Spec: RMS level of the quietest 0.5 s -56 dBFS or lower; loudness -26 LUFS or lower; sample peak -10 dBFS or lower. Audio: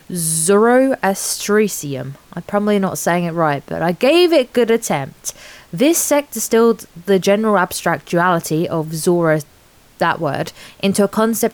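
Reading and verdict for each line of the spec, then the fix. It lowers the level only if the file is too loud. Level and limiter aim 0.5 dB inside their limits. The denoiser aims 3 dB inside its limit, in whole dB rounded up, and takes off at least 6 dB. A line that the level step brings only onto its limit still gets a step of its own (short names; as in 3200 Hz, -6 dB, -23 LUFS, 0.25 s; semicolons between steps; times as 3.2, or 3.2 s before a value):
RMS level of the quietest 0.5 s -49 dBFS: fail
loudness -16.0 LUFS: fail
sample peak -3.5 dBFS: fail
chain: gain -10.5 dB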